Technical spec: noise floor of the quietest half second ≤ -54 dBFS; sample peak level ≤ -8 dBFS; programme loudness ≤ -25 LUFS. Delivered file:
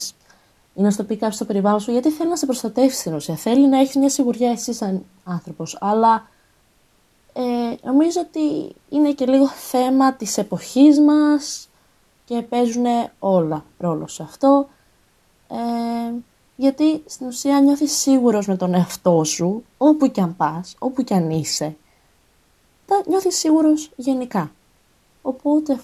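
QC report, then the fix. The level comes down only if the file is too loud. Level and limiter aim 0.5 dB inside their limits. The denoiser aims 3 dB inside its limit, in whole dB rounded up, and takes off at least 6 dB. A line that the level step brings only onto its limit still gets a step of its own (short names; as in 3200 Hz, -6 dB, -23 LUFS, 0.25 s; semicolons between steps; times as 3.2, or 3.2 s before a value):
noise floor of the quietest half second -59 dBFS: OK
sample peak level -3.0 dBFS: fail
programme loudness -19.0 LUFS: fail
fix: gain -6.5 dB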